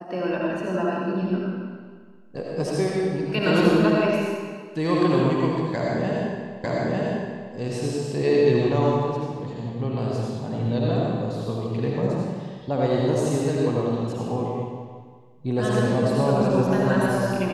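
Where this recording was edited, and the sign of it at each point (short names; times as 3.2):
6.64 repeat of the last 0.9 s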